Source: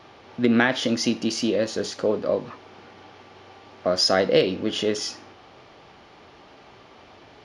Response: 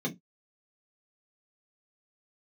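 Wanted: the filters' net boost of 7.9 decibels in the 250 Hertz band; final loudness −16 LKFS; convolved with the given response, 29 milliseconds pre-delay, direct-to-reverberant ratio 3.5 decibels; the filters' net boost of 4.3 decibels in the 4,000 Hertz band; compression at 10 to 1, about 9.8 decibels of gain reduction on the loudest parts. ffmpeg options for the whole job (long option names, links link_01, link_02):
-filter_complex "[0:a]equalizer=frequency=250:width_type=o:gain=9,equalizer=frequency=4000:width_type=o:gain=6,acompressor=threshold=-18dB:ratio=10,asplit=2[link_01][link_02];[1:a]atrim=start_sample=2205,adelay=29[link_03];[link_02][link_03]afir=irnorm=-1:irlink=0,volume=-8.5dB[link_04];[link_01][link_04]amix=inputs=2:normalize=0,volume=1.5dB"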